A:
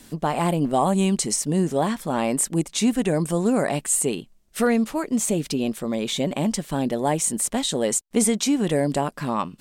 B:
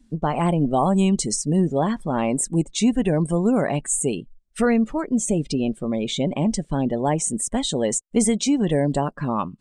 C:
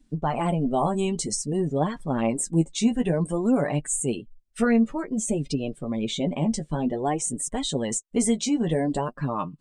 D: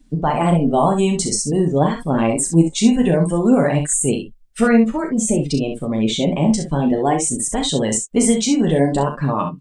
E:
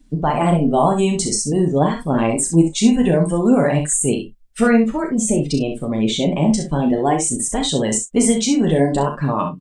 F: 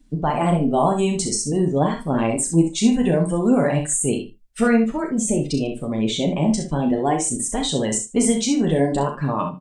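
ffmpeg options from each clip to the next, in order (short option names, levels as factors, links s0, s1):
-af "afftdn=nr=20:nf=-36,lowpass=f=9300:w=0.5412,lowpass=f=9300:w=1.3066,lowshelf=f=100:g=11.5"
-af "flanger=delay=6.5:depth=6.6:regen=20:speed=0.53:shape=sinusoidal"
-af "aecho=1:1:36|64:0.398|0.422,volume=2.24"
-filter_complex "[0:a]asplit=2[s0][s1];[s1]adelay=33,volume=0.211[s2];[s0][s2]amix=inputs=2:normalize=0"
-af "aecho=1:1:80:0.133,volume=0.708"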